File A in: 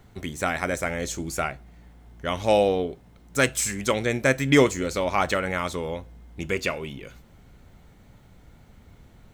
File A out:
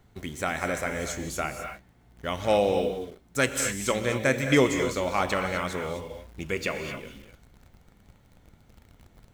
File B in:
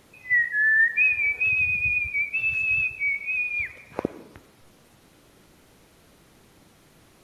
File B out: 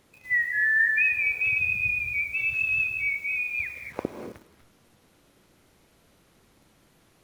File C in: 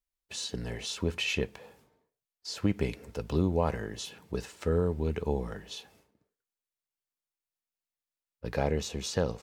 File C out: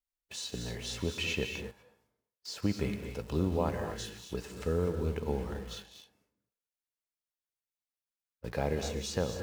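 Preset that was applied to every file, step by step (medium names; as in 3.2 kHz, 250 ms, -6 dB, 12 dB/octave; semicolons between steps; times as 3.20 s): gated-style reverb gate 280 ms rising, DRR 5.5 dB; in parallel at -7 dB: bit crusher 7-bit; on the sum: trim -6.5 dB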